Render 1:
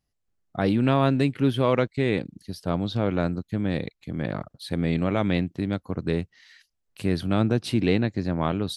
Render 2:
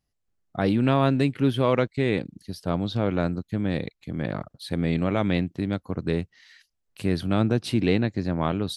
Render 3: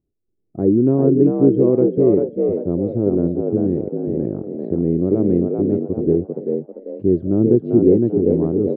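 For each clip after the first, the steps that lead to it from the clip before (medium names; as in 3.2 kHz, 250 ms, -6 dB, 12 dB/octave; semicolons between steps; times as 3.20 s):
no audible change
resonant low-pass 370 Hz, resonance Q 4.4; frequency-shifting echo 393 ms, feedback 33%, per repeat +58 Hz, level -4.5 dB; trim +1.5 dB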